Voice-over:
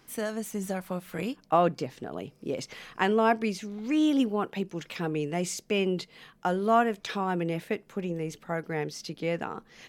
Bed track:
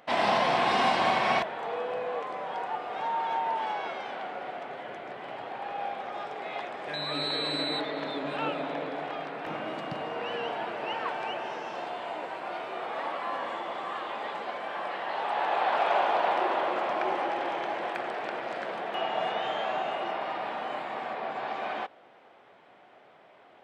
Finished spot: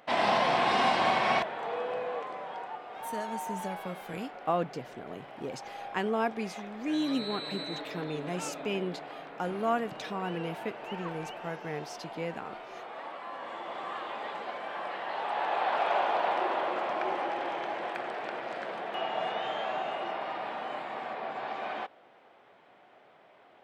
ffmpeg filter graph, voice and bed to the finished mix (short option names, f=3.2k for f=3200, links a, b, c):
-filter_complex "[0:a]adelay=2950,volume=-6dB[a];[1:a]volume=4.5dB,afade=t=out:st=1.95:d=0.86:silence=0.446684,afade=t=in:st=13.35:d=0.48:silence=0.530884[b];[a][b]amix=inputs=2:normalize=0"